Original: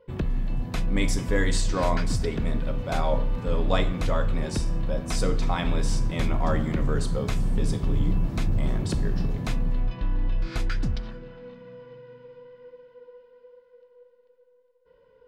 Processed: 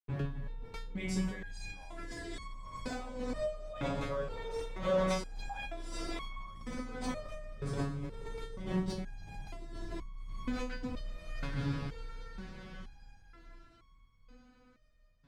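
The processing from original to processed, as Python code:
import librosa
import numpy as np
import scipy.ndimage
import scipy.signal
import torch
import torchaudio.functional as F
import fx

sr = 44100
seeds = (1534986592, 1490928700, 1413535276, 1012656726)

y = fx.peak_eq(x, sr, hz=93.0, db=-12.0, octaves=1.3, at=(4.1, 6.38))
y = np.sign(y) * np.maximum(np.abs(y) - 10.0 ** (-42.5 / 20.0), 0.0)
y = fx.echo_diffused(y, sr, ms=796, feedback_pct=46, wet_db=-3.0)
y = fx.over_compress(y, sr, threshold_db=-29.0, ratio=-1.0)
y = fx.lowpass(y, sr, hz=4000.0, slope=6)
y = fx.resonator_held(y, sr, hz=2.1, low_hz=140.0, high_hz=1100.0)
y = y * 10.0 ** (7.5 / 20.0)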